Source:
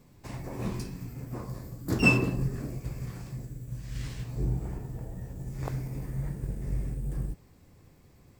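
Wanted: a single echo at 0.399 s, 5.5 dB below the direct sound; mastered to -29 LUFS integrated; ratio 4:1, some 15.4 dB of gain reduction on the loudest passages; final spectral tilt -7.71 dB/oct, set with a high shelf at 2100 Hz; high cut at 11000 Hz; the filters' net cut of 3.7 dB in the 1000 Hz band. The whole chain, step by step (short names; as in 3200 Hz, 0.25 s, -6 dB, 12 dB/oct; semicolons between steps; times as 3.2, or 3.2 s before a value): LPF 11000 Hz; bell 1000 Hz -4 dB; high shelf 2100 Hz -3 dB; compressor 4:1, threshold -36 dBFS; echo 0.399 s -5.5 dB; gain +11 dB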